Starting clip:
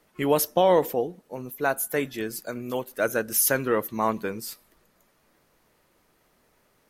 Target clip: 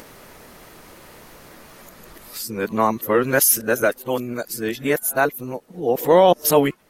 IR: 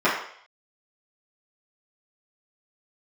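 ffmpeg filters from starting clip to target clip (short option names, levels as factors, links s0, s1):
-af "areverse,acompressor=mode=upward:threshold=0.0158:ratio=2.5,volume=2"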